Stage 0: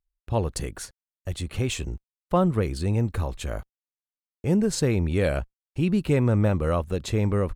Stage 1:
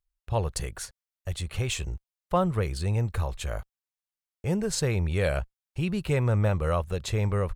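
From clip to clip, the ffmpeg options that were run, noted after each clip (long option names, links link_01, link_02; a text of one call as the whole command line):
ffmpeg -i in.wav -af "equalizer=frequency=270:width=1.5:gain=-12" out.wav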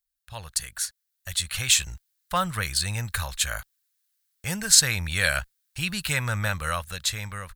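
ffmpeg -i in.wav -af "dynaudnorm=framelen=340:gausssize=7:maxgain=10dB,crystalizer=i=8.5:c=0,equalizer=frequency=400:width_type=o:width=0.67:gain=-12,equalizer=frequency=1600:width_type=o:width=0.67:gain=10,equalizer=frequency=4000:width_type=o:width=0.67:gain=5,volume=-13.5dB" out.wav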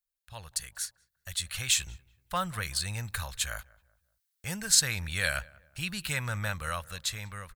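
ffmpeg -i in.wav -filter_complex "[0:a]asplit=2[link_01][link_02];[link_02]adelay=190,lowpass=frequency=1400:poles=1,volume=-21.5dB,asplit=2[link_03][link_04];[link_04]adelay=190,lowpass=frequency=1400:poles=1,volume=0.42,asplit=2[link_05][link_06];[link_06]adelay=190,lowpass=frequency=1400:poles=1,volume=0.42[link_07];[link_01][link_03][link_05][link_07]amix=inputs=4:normalize=0,volume=-6dB" out.wav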